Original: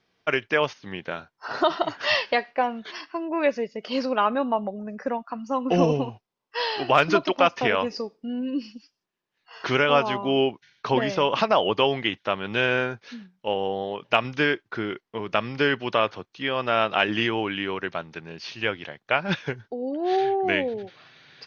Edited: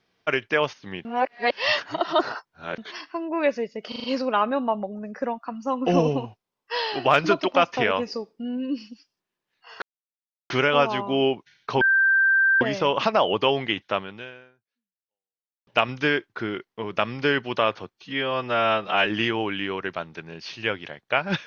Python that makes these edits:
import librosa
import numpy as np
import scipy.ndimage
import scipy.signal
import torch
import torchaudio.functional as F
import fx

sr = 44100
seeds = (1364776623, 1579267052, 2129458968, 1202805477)

y = fx.edit(x, sr, fx.reverse_span(start_s=1.05, length_s=1.73),
    fx.stutter(start_s=3.88, slice_s=0.04, count=5),
    fx.insert_silence(at_s=9.66, length_s=0.68),
    fx.insert_tone(at_s=10.97, length_s=0.8, hz=1570.0, db=-15.5),
    fx.fade_out_span(start_s=12.34, length_s=1.69, curve='exp'),
    fx.stretch_span(start_s=16.3, length_s=0.75, factor=1.5), tone=tone)